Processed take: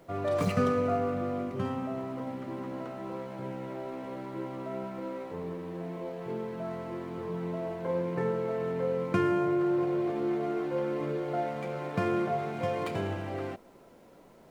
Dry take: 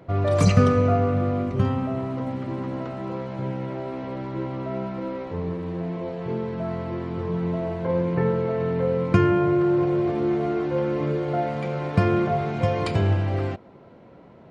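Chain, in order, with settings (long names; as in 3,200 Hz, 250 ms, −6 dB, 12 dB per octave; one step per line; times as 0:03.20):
running median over 9 samples
Bessel high-pass filter 220 Hz, order 2
background noise pink −62 dBFS
level −5.5 dB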